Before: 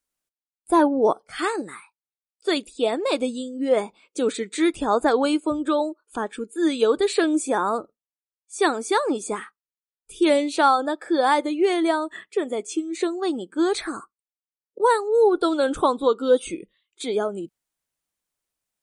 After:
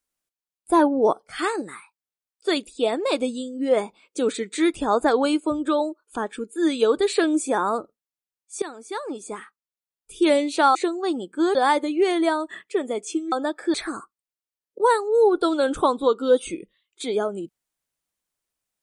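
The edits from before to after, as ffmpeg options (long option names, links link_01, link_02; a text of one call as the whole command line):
ffmpeg -i in.wav -filter_complex "[0:a]asplit=6[link_01][link_02][link_03][link_04][link_05][link_06];[link_01]atrim=end=8.62,asetpts=PTS-STARTPTS,afade=type=out:start_time=8.616:duration=0.004:curve=hsin:silence=0.141254[link_07];[link_02]atrim=start=8.62:end=10.752,asetpts=PTS-STARTPTS,afade=type=in:duration=1.6:silence=0.141254[link_08];[link_03]atrim=start=12.938:end=13.742[link_09];[link_04]atrim=start=11.168:end=12.942[link_10];[link_05]atrim=start=10.748:end=11.172[link_11];[link_06]atrim=start=13.738[link_12];[link_07][link_08]concat=n=2:v=0:a=1[link_13];[link_13][link_09]acrossfade=duration=0.004:curve1=hsin:curve2=hsin[link_14];[link_14][link_10]acrossfade=duration=0.004:curve1=hsin:curve2=hsin[link_15];[link_15][link_11]acrossfade=duration=0.004:curve1=hsin:curve2=hsin[link_16];[link_16][link_12]acrossfade=duration=0.004:curve1=hsin:curve2=hsin" out.wav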